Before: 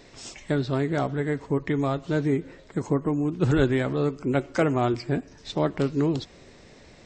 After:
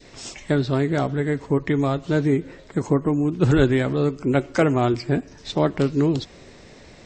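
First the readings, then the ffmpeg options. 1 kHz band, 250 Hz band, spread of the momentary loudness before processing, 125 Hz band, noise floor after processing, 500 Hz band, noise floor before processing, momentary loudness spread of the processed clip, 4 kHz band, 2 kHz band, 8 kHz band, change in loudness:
+3.0 dB, +4.0 dB, 9 LU, +4.5 dB, −47 dBFS, +4.0 dB, −51 dBFS, 9 LU, +4.5 dB, +3.5 dB, +4.5 dB, +4.0 dB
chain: -af "adynamicequalizer=threshold=0.02:dfrequency=950:dqfactor=0.71:tfrequency=950:tqfactor=0.71:attack=5:release=100:ratio=0.375:range=2:mode=cutabove:tftype=bell,volume=4.5dB"

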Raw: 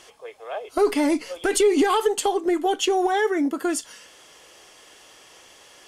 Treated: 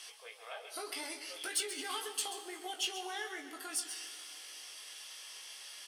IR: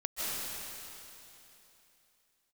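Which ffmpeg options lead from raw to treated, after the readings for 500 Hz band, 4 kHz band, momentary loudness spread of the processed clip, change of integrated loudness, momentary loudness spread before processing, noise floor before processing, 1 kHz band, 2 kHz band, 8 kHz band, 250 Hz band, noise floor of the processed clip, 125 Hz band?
−26.0 dB, −6.5 dB, 11 LU, −18.0 dB, 11 LU, −51 dBFS, −19.5 dB, −12.0 dB, −7.5 dB, −28.0 dB, −52 dBFS, can't be measured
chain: -filter_complex "[0:a]equalizer=frequency=7000:width_type=o:width=0.33:gain=-14,acompressor=threshold=-36dB:ratio=2,flanger=delay=9.4:depth=5:regen=76:speed=1.9:shape=sinusoidal,bandpass=frequency=7500:width_type=q:width=0.83:csg=0,asoftclip=type=tanh:threshold=-36dB,asplit=2[link_01][link_02];[link_02]adelay=19,volume=-5.5dB[link_03];[link_01][link_03]amix=inputs=2:normalize=0,aecho=1:1:133:0.266,asplit=2[link_04][link_05];[1:a]atrim=start_sample=2205[link_06];[link_05][link_06]afir=irnorm=-1:irlink=0,volume=-18.5dB[link_07];[link_04][link_07]amix=inputs=2:normalize=0,volume=10.5dB"

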